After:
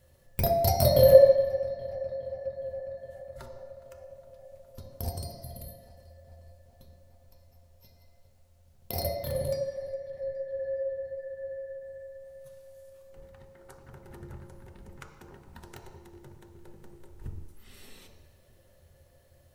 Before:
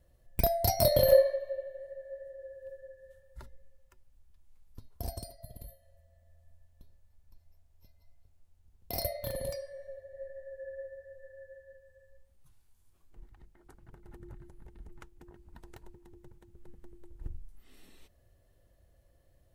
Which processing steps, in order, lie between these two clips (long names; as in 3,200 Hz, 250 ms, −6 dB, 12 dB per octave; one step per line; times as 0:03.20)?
feedback echo with a low-pass in the loop 413 ms, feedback 75%, low-pass 4,100 Hz, level −21 dB
on a send at −1.5 dB: convolution reverb RT60 1.0 s, pre-delay 3 ms
on the sum: one half of a high-frequency compander encoder only